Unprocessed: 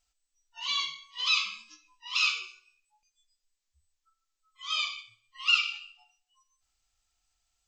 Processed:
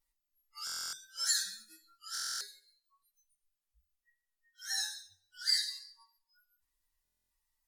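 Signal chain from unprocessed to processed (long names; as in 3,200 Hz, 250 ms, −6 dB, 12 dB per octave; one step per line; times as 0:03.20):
partials spread apart or drawn together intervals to 122%
0:04.66–0:05.86: flat-topped bell 530 Hz +8 dB
buffer that repeats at 0:00.65/0:02.13/0:07.03, samples 1,024, times 11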